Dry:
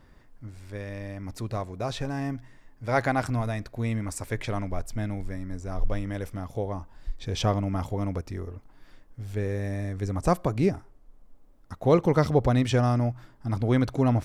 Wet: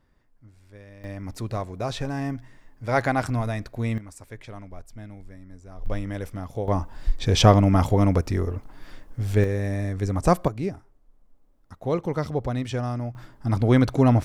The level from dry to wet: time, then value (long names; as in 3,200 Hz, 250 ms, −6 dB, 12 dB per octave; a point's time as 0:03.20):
−10 dB
from 0:01.04 +2 dB
from 0:03.98 −10 dB
from 0:05.86 +1 dB
from 0:06.68 +10 dB
from 0:09.44 +4 dB
from 0:10.48 −5 dB
from 0:13.15 +5 dB